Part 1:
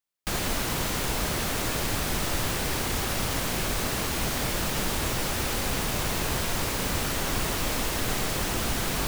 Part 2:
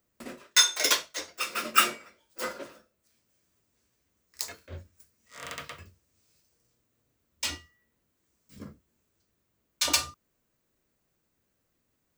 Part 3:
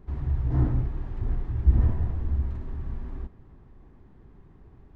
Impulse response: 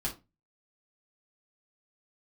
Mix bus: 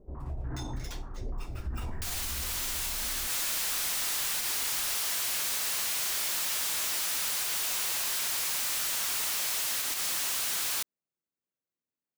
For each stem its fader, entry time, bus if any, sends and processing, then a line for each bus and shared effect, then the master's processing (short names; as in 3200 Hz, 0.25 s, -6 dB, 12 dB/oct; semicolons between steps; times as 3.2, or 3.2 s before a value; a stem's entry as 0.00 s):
-2.0 dB, 1.75 s, no send, HPF 890 Hz 12 dB/oct; high shelf 2700 Hz +12 dB; soft clip -26.5 dBFS, distortion -8 dB
-19.5 dB, 0.00 s, no send, HPF 160 Hz
-5.5 dB, 0.00 s, no send, bell 95 Hz -7 dB 1.4 oct; stepped low-pass 6.8 Hz 550–1800 Hz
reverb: off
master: limiter -27.5 dBFS, peak gain reduction 10.5 dB